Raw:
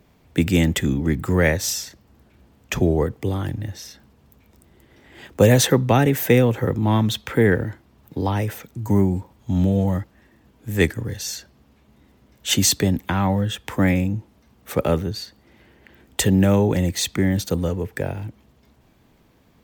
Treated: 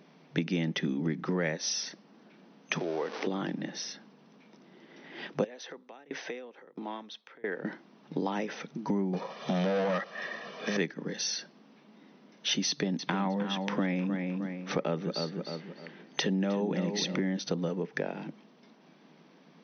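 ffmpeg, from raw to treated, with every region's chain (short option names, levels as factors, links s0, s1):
-filter_complex "[0:a]asettb=1/sr,asplit=3[s0][s1][s2];[s0]atrim=end=2.794[s3];[s1]atrim=start=2.79:end=3.27,asetpts=PTS-STARTPTS,afade=t=in:d=0.004:c=qsin,afade=t=out:st=0.476:d=0.004:c=qsin,aeval=exprs='val(0)+0.5*0.0376*sgn(val(0))':c=same,acompressor=threshold=0.0891:ratio=2:attack=3.2:release=140:knee=1:detection=peak,highpass=470,lowpass=7700[s4];[s2]atrim=start=3.266[s5];[s3][s4]acrossfade=d=0.004:c1=hsin:c2=qsin[s6];[s6][s5]acrossfade=d=0.004:c1=qsin:c2=hsin,asettb=1/sr,asplit=3[s7][s8][s9];[s7]atrim=end=5.444[s10];[s8]atrim=start=5.44:end=7.65,asetpts=PTS-STARTPTS,afade=t=in:d=0.004:c=qsin,afade=t=out:st=2.206:d=0.004:c=qsin,acompressor=threshold=0.0562:ratio=4:attack=3.2:release=140:knee=1:detection=peak,highpass=380,lowpass=6500,aeval=exprs='val(0)*pow(10,-27*if(lt(mod(1.5*n/s,1),2*abs(1.5)/1000),1-mod(1.5*n/s,1)/(2*abs(1.5)/1000),(mod(1.5*n/s,1)-2*abs(1.5)/1000)/(1-2*abs(1.5)/1000))/20)':c=same[s11];[s9]atrim=start=7.646[s12];[s10][s11]acrossfade=d=0.004:c1=hsin:c2=qsin[s13];[s13][s12]acrossfade=d=0.004:c1=qsin:c2=hsin,asettb=1/sr,asplit=3[s14][s15][s16];[s14]atrim=end=9.134[s17];[s15]atrim=start=9.13:end=10.77,asetpts=PTS-STARTPTS,afade=t=in:d=0.004:c=qsin,afade=t=out:st=1.636:d=0.004:c=qsin,highpass=f=160:p=1,aecho=1:1:1.7:0.8,atrim=end_sample=72324,asplit=2[s18][s19];[s19]highpass=f=720:p=1,volume=17.8,asoftclip=type=tanh:threshold=0.282[s20];[s18][s20]amix=inputs=2:normalize=0,lowpass=f=5000:p=1,volume=0.501[s21];[s16]atrim=start=10.766[s22];[s17][s21]acrossfade=d=0.004:c1=hsin:c2=qsin[s23];[s23][s22]acrossfade=d=0.004:c1=qsin:c2=hsin,asettb=1/sr,asplit=3[s24][s25][s26];[s24]atrim=end=12.684[s27];[s25]atrim=start=12.68:end=17.2,asetpts=PTS-STARTPTS,afade=t=in:d=0.004:c=qsin,afade=t=out:st=4.516:d=0.004:c=qsin,highpass=63,asplit=2[s28][s29];[s29]adelay=309,lowpass=f=3700:p=1,volume=0.335,asplit=2[s30][s31];[s31]adelay=309,lowpass=f=3700:p=1,volume=0.31,asplit=2[s32][s33];[s33]adelay=309,lowpass=f=3700:p=1,volume=0.31[s34];[s28][s30][s32][s34]amix=inputs=4:normalize=0,atrim=end_sample=199332[s35];[s26]atrim=start=17.196[s36];[s27][s35]acrossfade=d=0.004:c1=hsin:c2=qsin[s37];[s37][s36]acrossfade=d=0.004:c1=qsin:c2=hsin,afftfilt=real='re*between(b*sr/4096,140,6200)':imag='im*between(b*sr/4096,140,6200)':win_size=4096:overlap=0.75,acompressor=threshold=0.0316:ratio=4,volume=1.12"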